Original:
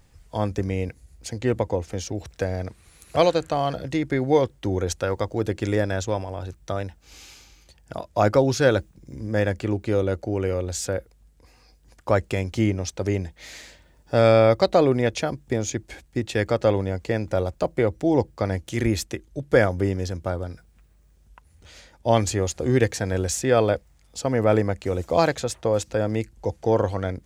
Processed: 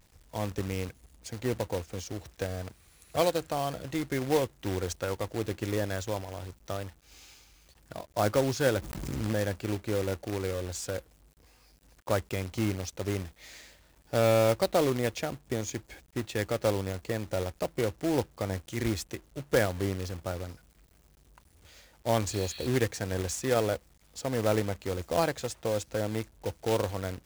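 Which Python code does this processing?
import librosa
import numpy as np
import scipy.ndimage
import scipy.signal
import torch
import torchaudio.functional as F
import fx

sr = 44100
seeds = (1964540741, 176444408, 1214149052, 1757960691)

y = fx.spec_repair(x, sr, seeds[0], start_s=22.34, length_s=0.3, low_hz=1100.0, high_hz=4500.0, source='before')
y = fx.quant_companded(y, sr, bits=4)
y = fx.pre_swell(y, sr, db_per_s=26.0, at=(8.79, 9.41))
y = F.gain(torch.from_numpy(y), -8.0).numpy()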